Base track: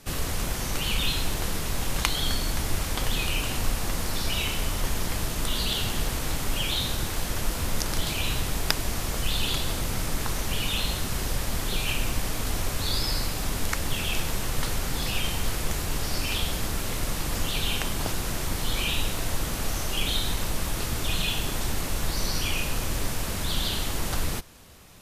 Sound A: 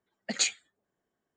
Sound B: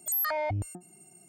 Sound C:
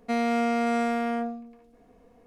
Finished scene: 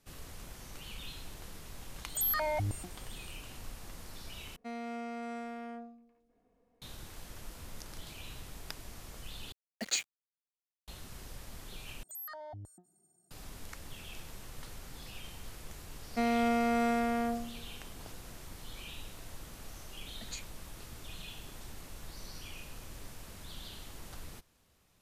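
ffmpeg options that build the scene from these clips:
ffmpeg -i bed.wav -i cue0.wav -i cue1.wav -i cue2.wav -filter_complex "[2:a]asplit=2[link_01][link_02];[3:a]asplit=2[link_03][link_04];[1:a]asplit=2[link_05][link_06];[0:a]volume=-19dB[link_07];[link_05]acrusher=bits=5:mix=0:aa=0.5[link_08];[link_02]asuperstop=centerf=2500:order=20:qfactor=2.5[link_09];[link_07]asplit=4[link_10][link_11][link_12][link_13];[link_10]atrim=end=4.564[link_14];[link_03]atrim=end=2.26,asetpts=PTS-STARTPTS,volume=-15.5dB[link_15];[link_11]atrim=start=6.816:end=9.524[link_16];[link_08]atrim=end=1.36,asetpts=PTS-STARTPTS,volume=-5.5dB[link_17];[link_12]atrim=start=10.876:end=12.034[link_18];[link_09]atrim=end=1.28,asetpts=PTS-STARTPTS,volume=-15.5dB[link_19];[link_13]atrim=start=13.306[link_20];[link_01]atrim=end=1.28,asetpts=PTS-STARTPTS,volume=-2.5dB,afade=type=in:duration=0.004:curve=hsin,afade=type=out:start_time=1.276:duration=0.004:curve=hsin,adelay=2090[link_21];[link_04]atrim=end=2.26,asetpts=PTS-STARTPTS,volume=-4dB,afade=type=in:duration=0.004:curve=hsin,afade=type=out:start_time=2.256:duration=0.004:curve=hsin,adelay=16080[link_22];[link_06]atrim=end=1.36,asetpts=PTS-STARTPTS,volume=-17.5dB,afade=type=in:duration=0.004:curve=hsin,afade=type=out:start_time=1.356:duration=0.004:curve=hsin,adelay=19920[link_23];[link_14][link_15]acrossfade=duration=0.004:curve1=hsin:curve2=hsin[link_24];[link_24][link_16]acrossfade=duration=0.004:curve1=hsin:curve2=hsin[link_25];[link_25][link_17]acrossfade=duration=0.004:curve1=hsin:curve2=hsin[link_26];[link_26][link_18]acrossfade=duration=0.004:curve1=hsin:curve2=hsin[link_27];[link_27][link_19]acrossfade=duration=0.004:curve1=hsin:curve2=hsin[link_28];[link_28][link_20]acrossfade=duration=0.004:curve1=hsin:curve2=hsin[link_29];[link_29][link_21][link_22][link_23]amix=inputs=4:normalize=0" out.wav

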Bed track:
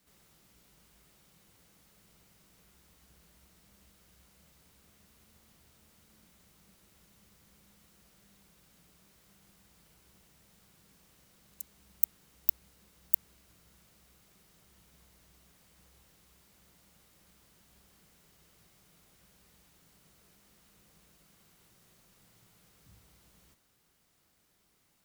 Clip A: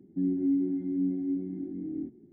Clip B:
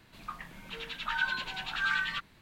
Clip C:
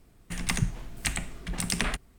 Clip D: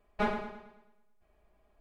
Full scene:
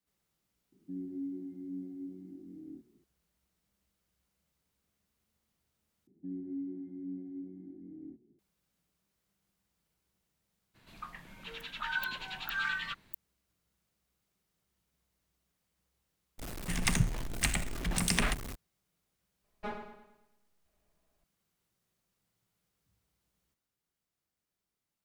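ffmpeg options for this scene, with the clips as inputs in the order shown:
ffmpeg -i bed.wav -i cue0.wav -i cue1.wav -i cue2.wav -i cue3.wav -filter_complex "[1:a]asplit=2[link_01][link_02];[0:a]volume=-17.5dB[link_03];[3:a]aeval=exprs='val(0)+0.5*0.02*sgn(val(0))':channel_layout=same[link_04];[4:a]asplit=2[link_05][link_06];[link_06]adelay=12,volume=-10.5dB[link_07];[link_05][link_07]amix=inputs=2:normalize=0[link_08];[link_03]asplit=2[link_09][link_10];[link_09]atrim=end=6.074[link_11];[link_02]atrim=end=2.32,asetpts=PTS-STARTPTS,volume=-12.5dB[link_12];[link_10]atrim=start=8.386[link_13];[link_01]atrim=end=2.32,asetpts=PTS-STARTPTS,volume=-12.5dB,afade=type=in:duration=0.004:curve=hsin,afade=type=out:start_time=2.316:duration=0.004:curve=hsin,adelay=720[link_14];[2:a]atrim=end=2.41,asetpts=PTS-STARTPTS,volume=-4dB,afade=type=in:duration=0.02,afade=type=out:start_time=2.39:duration=0.02,adelay=473634S[link_15];[link_04]atrim=end=2.18,asetpts=PTS-STARTPTS,volume=-2dB,afade=type=in:duration=0.02,afade=type=out:start_time=2.16:duration=0.02,adelay=16380[link_16];[link_08]atrim=end=1.8,asetpts=PTS-STARTPTS,volume=-10dB,afade=type=in:duration=0.004:curve=hsin,afade=type=out:start_time=1.796:duration=0.004:curve=hsin,adelay=19440[link_17];[link_11][link_12]acrossfade=duration=0.004:curve1=hsin:curve2=hsin[link_18];[link_18][link_13]acrossfade=duration=0.004:curve1=hsin:curve2=hsin[link_19];[link_19][link_14][link_15][link_16][link_17]amix=inputs=5:normalize=0" out.wav

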